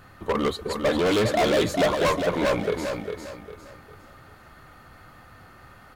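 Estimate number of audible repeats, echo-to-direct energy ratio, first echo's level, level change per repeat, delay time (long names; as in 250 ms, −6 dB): 4, −5.5 dB, −6.0 dB, −9.5 dB, 403 ms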